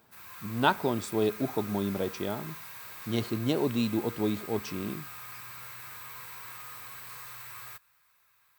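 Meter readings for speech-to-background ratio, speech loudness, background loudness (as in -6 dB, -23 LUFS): 10.5 dB, -31.0 LUFS, -41.5 LUFS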